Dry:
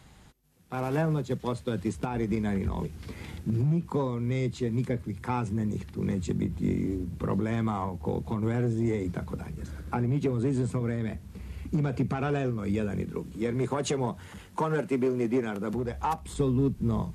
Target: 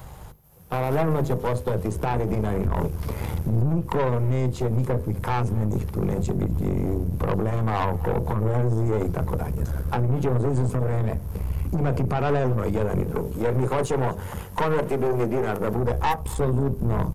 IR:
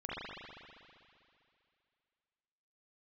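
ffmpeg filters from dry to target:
-filter_complex "[0:a]lowshelf=f=100:g=10.5,bandreject=f=50:t=h:w=6,bandreject=f=100:t=h:w=6,bandreject=f=150:t=h:w=6,bandreject=f=200:t=h:w=6,bandreject=f=250:t=h:w=6,bandreject=f=300:t=h:w=6,bandreject=f=350:t=h:w=6,bandreject=f=400:t=h:w=6,bandreject=f=450:t=h:w=6,bandreject=f=500:t=h:w=6,asplit=2[s0][s1];[s1]acompressor=threshold=0.02:ratio=6,volume=1.12[s2];[s0][s2]amix=inputs=2:normalize=0,crystalizer=i=3:c=0,alimiter=limit=0.133:level=0:latency=1:release=64,equalizer=f=125:t=o:w=1:g=4,equalizer=f=250:t=o:w=1:g=-6,equalizer=f=500:t=o:w=1:g=8,equalizer=f=1000:t=o:w=1:g=6,equalizer=f=2000:t=o:w=1:g=-5,equalizer=f=4000:t=o:w=1:g=-8,equalizer=f=8000:t=o:w=1:g=-11,aeval=exprs='(tanh(14.1*val(0)+0.7)-tanh(0.7))/14.1':c=same,aecho=1:1:247:0.075,volume=1.78"

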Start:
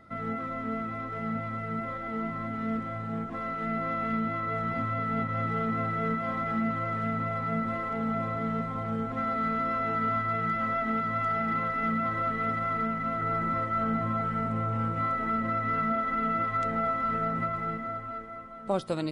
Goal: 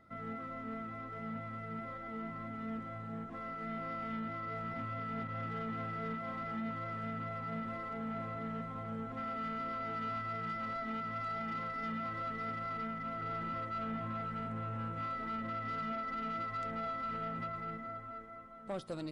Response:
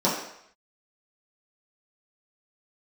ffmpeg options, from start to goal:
-af "asoftclip=type=tanh:threshold=0.0668,volume=0.376"

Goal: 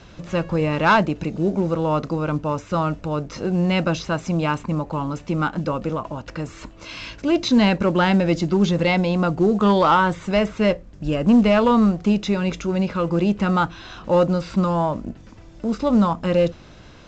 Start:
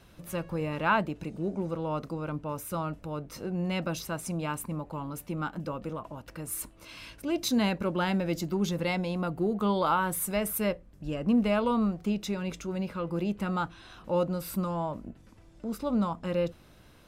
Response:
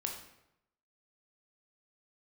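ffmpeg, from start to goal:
-filter_complex "[0:a]acrossover=split=4300[s0][s1];[s1]acompressor=threshold=0.00355:ratio=4:attack=1:release=60[s2];[s0][s2]amix=inputs=2:normalize=0,aeval=exprs='0.224*sin(PI/2*1.41*val(0)/0.224)':c=same,volume=1.68" -ar 16000 -c:a pcm_mulaw

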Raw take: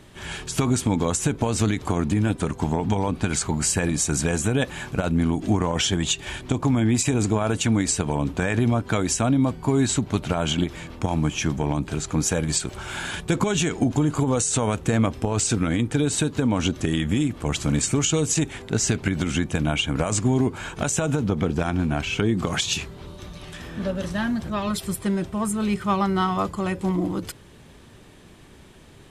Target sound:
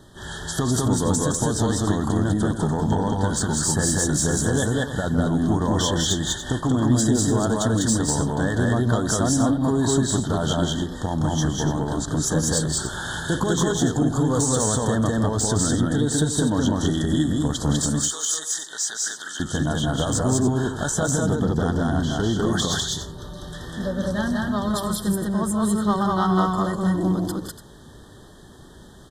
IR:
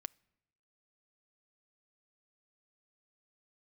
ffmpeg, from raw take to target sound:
-filter_complex "[0:a]asettb=1/sr,asplit=3[s0][s1][s2];[s0]atrim=end=17.854[s3];[s1]atrim=start=17.85:end=19.4,asetpts=PTS-STARTPTS,afade=t=in:d=0.004:c=qsin,afade=t=out:st=1.546:d=0.004:c=qsin,highpass=1400[s4];[s2]atrim=start=19.396[s5];[s3][s4]acrossfade=d=0.004:c1=hsin:c2=qsin[s6];[s6][s5]acrossfade=d=0.004:c1=qsin:c2=hsin,asoftclip=type=tanh:threshold=0.2,asuperstop=centerf=2400:order=20:qfactor=2,aecho=1:1:166.2|198.3|288.6:0.355|0.891|0.282"

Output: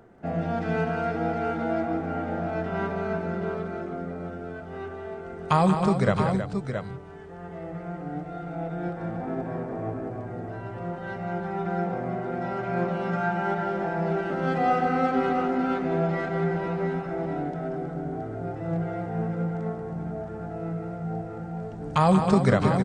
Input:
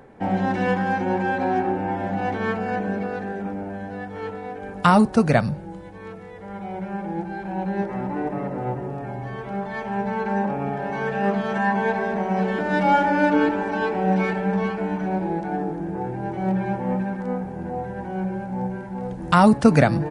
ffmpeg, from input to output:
-af "aecho=1:1:134|162|281|577|591:0.188|0.398|0.335|0.119|0.398,asetrate=38808,aresample=44100,volume=0.531"

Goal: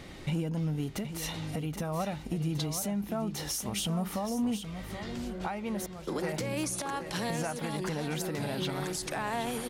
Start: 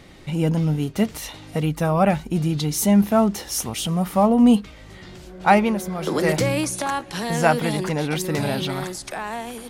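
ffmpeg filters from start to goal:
-filter_complex "[0:a]asettb=1/sr,asplit=3[s0][s1][s2];[s0]atrim=end=5.864[s3];[s1]atrim=start=5.86:end=6.34,asetpts=PTS-STARTPTS,afade=t=in:d=0.004:c=qsin,afade=t=out:st=0.476:d=0.004:c=qsin,agate=range=0.0224:threshold=0.178:ratio=3:detection=peak[s4];[s2]atrim=start=6.336[s5];[s3][s4]acrossfade=d=0.004:c1=hsin:c2=qsin[s6];[s6][s5]acrossfade=d=0.004:c1=qsin:c2=hsin,acompressor=threshold=0.0562:ratio=16,alimiter=limit=0.0708:level=0:latency=1:release=418,volume=16.8,asoftclip=hard,volume=0.0596,aecho=1:1:775:0.335"

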